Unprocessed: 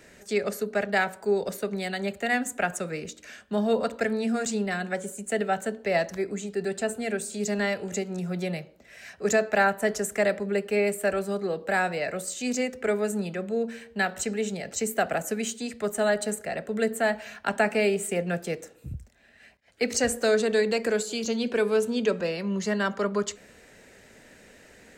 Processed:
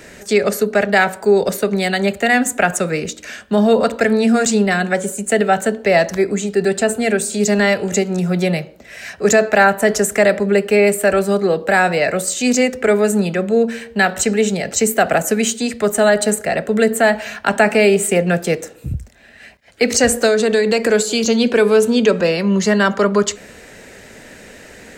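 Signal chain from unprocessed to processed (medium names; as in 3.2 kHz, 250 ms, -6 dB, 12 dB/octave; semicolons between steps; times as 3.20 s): in parallel at +2 dB: peak limiter -19 dBFS, peak gain reduction 8.5 dB; 20.26–20.90 s: on the sum: compression, threshold -17 dBFS, peak gain reduction 4.5 dB; trim +6 dB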